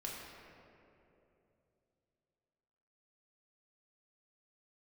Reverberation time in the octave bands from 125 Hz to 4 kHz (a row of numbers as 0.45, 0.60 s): 3.8, 3.3, 3.3, 2.5, 2.1, 1.4 s